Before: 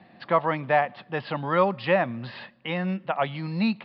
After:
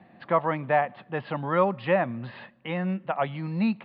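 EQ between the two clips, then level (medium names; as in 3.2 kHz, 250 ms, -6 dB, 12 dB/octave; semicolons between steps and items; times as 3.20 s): distance through air 310 m; 0.0 dB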